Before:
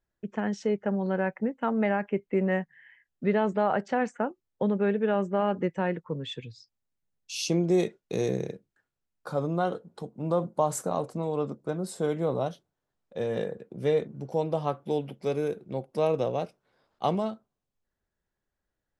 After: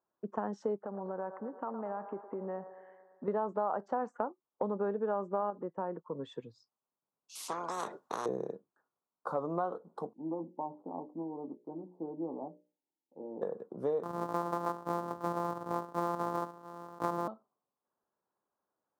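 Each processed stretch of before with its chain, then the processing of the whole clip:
0.76–3.28 s: treble shelf 4.2 kHz -12 dB + compression 5:1, threshold -35 dBFS + feedback echo behind a band-pass 112 ms, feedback 66%, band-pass 920 Hz, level -10 dB
5.50–6.19 s: gate -49 dBFS, range -11 dB + low-pass 1.7 kHz 6 dB/octave + compression 1.5:1, threshold -39 dBFS
7.35–8.26 s: treble shelf 5.7 kHz -4.5 dB + spectrum-flattening compressor 10:1
10.13–13.42 s: cascade formant filter u + hum notches 60/120/180/240/300/360/420/480/540/600 Hz + doubling 12 ms -6.5 dB
14.03–17.28 s: sorted samples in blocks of 256 samples + level flattener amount 50%
whole clip: high-pass 260 Hz 12 dB/octave; resonant high shelf 1.6 kHz -13 dB, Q 3; compression 3:1, threshold -32 dBFS

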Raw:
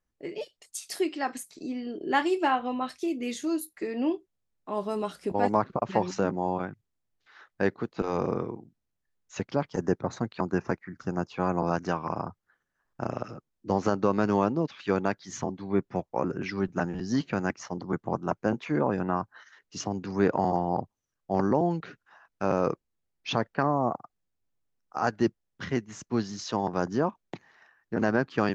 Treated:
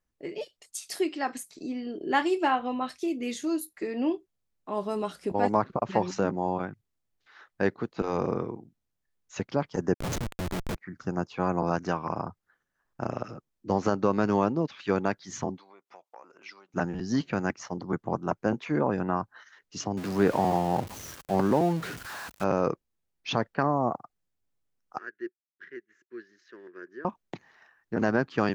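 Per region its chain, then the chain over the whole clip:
9.94–10.76 s: resonant high shelf 5 kHz +7.5 dB, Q 1.5 + Schmitt trigger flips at -36.5 dBFS
15.58–16.74 s: peaking EQ 1.7 kHz -10.5 dB 0.3 oct + compression 5:1, threshold -38 dBFS + high-pass 860 Hz
19.97–22.44 s: jump at every zero crossing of -34 dBFS + high-pass 42 Hz
24.98–27.05 s: companding laws mixed up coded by A + two resonant band-passes 790 Hz, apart 2.2 oct + bass shelf 470 Hz -12 dB
whole clip: none

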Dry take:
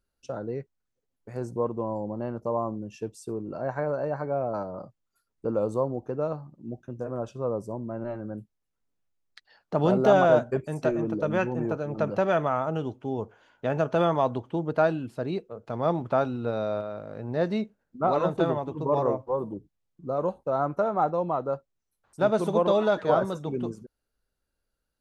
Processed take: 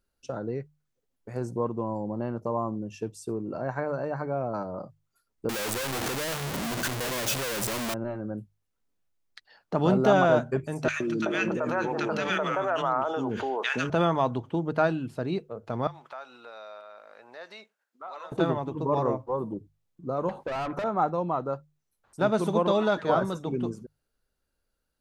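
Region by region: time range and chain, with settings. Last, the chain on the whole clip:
5.49–7.94 s: one-bit comparator + tilt EQ +1.5 dB/octave
10.88–13.90 s: frequency weighting A + three bands offset in time highs, lows, mids 120/380 ms, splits 340/1600 Hz + level flattener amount 70%
15.87–18.32 s: high-pass 1.1 kHz + compression 2:1, threshold -47 dBFS
20.29–20.84 s: overdrive pedal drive 26 dB, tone 2 kHz, clips at -13.5 dBFS + compression 2.5:1, threshold -33 dBFS
whole clip: hum notches 50/100/150 Hz; dynamic bell 560 Hz, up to -5 dB, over -35 dBFS, Q 1.3; trim +2 dB

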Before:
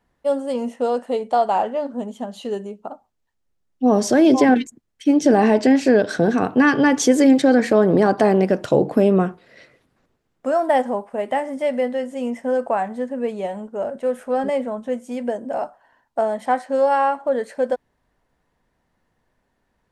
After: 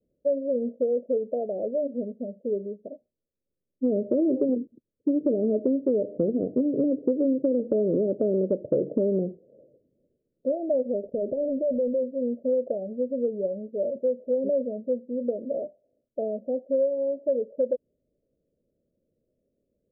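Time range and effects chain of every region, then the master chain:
11.03–12.03 s: waveshaping leveller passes 3 + compression 2.5:1, threshold -25 dBFS
whole clip: steep low-pass 600 Hz 96 dB/octave; tilt EQ +3.5 dB/octave; compression, threshold -24 dBFS; trim +3.5 dB

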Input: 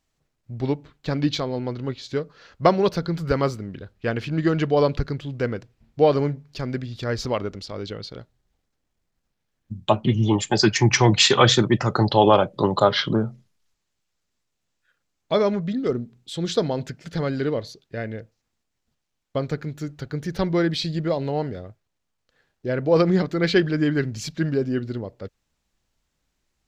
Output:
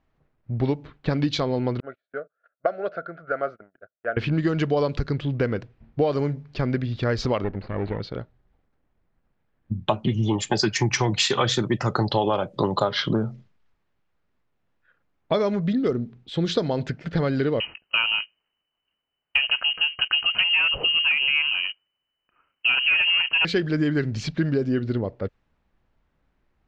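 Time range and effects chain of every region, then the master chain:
1.80–4.17 s: two resonant band-passes 960 Hz, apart 1.1 oct + gate -53 dBFS, range -26 dB
7.44–8.00 s: comb filter that takes the minimum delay 0.46 ms + distance through air 360 m
17.60–23.45 s: waveshaping leveller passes 2 + frequency inversion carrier 3 kHz
whole clip: level-controlled noise filter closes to 1.8 kHz, open at -14.5 dBFS; compression, threshold -26 dBFS; trim +6.5 dB

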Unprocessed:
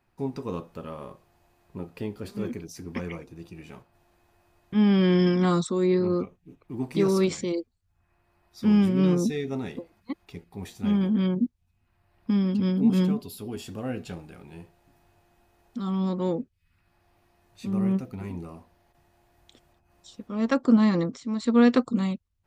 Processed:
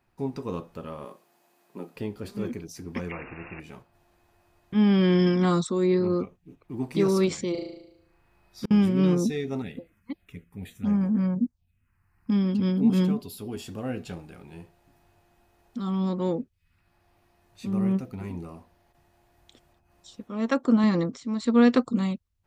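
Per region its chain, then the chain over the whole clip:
1.05–1.96 s: high-pass 200 Hz 24 dB/octave + treble shelf 6.1 kHz +7 dB
3.11–3.60 s: zero-crossing glitches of -32.5 dBFS + brick-wall FIR low-pass 2.8 kHz + spectrum-flattening compressor 2:1
7.51–8.71 s: flutter echo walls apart 6.3 m, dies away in 0.82 s + inverted gate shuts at -19 dBFS, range -39 dB
9.62–12.32 s: peaking EQ 370 Hz -12 dB 0.22 oct + touch-sensitive phaser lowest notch 590 Hz, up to 3.4 kHz, full sweep at -23.5 dBFS
20.24–20.84 s: bass shelf 130 Hz -8 dB + band-stop 4.8 kHz, Q 7.1
whole clip: none

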